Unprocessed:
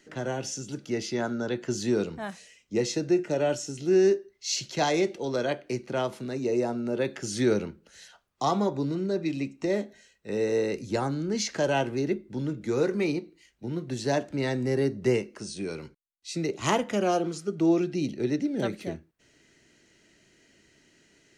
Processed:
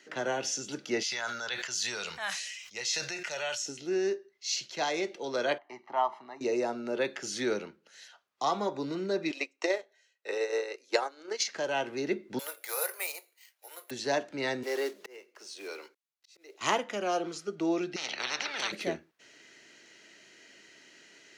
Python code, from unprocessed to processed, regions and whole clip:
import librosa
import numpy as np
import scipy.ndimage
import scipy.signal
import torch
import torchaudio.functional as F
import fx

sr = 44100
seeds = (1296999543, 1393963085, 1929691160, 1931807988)

y = fx.chain(x, sr, fx.tone_stack(knobs='10-0-10'),
    fx.sustainer(db_per_s=31.0), at=(1.03, 3.66))
y = fx.chain(y, sr, fx.bandpass_q(hz=870.0, q=2.4),
    fx.comb(ms=1.0, depth=0.75), at=(5.58, 6.41))
y = fx.chain(y, sr, fx.highpass(hz=410.0, slope=24),
    fx.transient(attack_db=9, sustain_db=-9), at=(9.31, 11.48))
y = fx.chain(y, sr, fx.steep_highpass(hz=550.0, slope=36),
    fx.resample_bad(factor=4, down='none', up='zero_stuff'), at=(12.39, 13.91))
y = fx.chain(y, sr, fx.block_float(bits=5),
    fx.highpass(hz=350.0, slope=24),
    fx.auto_swell(attack_ms=776.0), at=(14.63, 16.61))
y = fx.chain(y, sr, fx.lowpass(hz=1200.0, slope=12),
    fx.tilt_eq(slope=4.5),
    fx.spectral_comp(ratio=10.0), at=(17.96, 18.72))
y = fx.weighting(y, sr, curve='A')
y = fx.rider(y, sr, range_db=10, speed_s=0.5)
y = fx.peak_eq(y, sr, hz=8600.0, db=-5.5, octaves=0.4)